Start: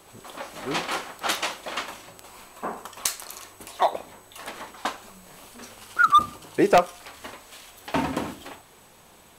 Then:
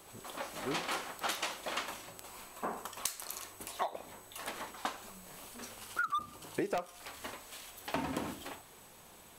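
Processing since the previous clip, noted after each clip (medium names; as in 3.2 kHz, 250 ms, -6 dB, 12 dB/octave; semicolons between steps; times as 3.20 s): treble shelf 9.3 kHz +5.5 dB; compression 10:1, threshold -27 dBFS, peak gain reduction 15 dB; trim -4.5 dB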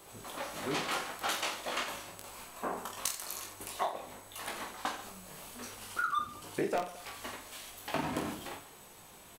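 reverse bouncing-ball echo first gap 20 ms, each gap 1.4×, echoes 5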